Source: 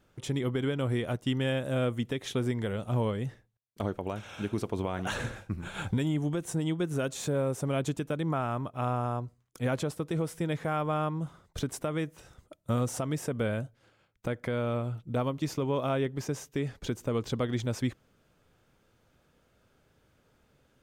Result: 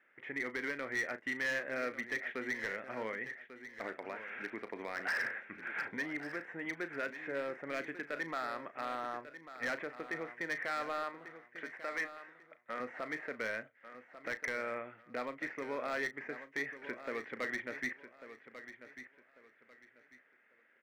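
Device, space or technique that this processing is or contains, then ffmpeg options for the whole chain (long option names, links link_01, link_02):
megaphone: -filter_complex "[0:a]asettb=1/sr,asplit=3[link_01][link_02][link_03];[link_01]atrim=end=11.034[link_04];[link_02]atrim=start=11.03:end=12.8,asetpts=PTS-STARTPTS,afade=type=in:duration=0.004:curve=qsin,afade=type=out:start_time=1.766:duration=0.004:curve=qsin,highpass=frequency=480:poles=1[link_05];[link_03]atrim=start=12.796[link_06];[link_04][link_05]acrossfade=duration=0.004:curve1=hsin:curve2=qsin[link_07];[link_07][link_06]acrossfade=duration=0.004:curve1=qsin:curve2=hsin,acrossover=split=2700[link_08][link_09];[link_09]acompressor=threshold=-59dB:ratio=4:attack=1:release=60[link_10];[link_08][link_10]amix=inputs=2:normalize=0,highpass=560,lowpass=3100,equalizer=frequency=250:width_type=o:width=1:gain=6,equalizer=frequency=1000:width_type=o:width=1:gain=-4,equalizer=frequency=2000:width_type=o:width=1:gain=11,equalizer=frequency=4000:width_type=o:width=1:gain=-9,equalizer=frequency=8000:width_type=o:width=1:gain=-5,equalizer=frequency=1900:width_type=o:width=0.53:gain=11.5,asoftclip=type=hard:threshold=-25dB,asplit=2[link_11][link_12];[link_12]adelay=36,volume=-12.5dB[link_13];[link_11][link_13]amix=inputs=2:normalize=0,aecho=1:1:1144|2288|3432:0.237|0.064|0.0173,volume=-5.5dB"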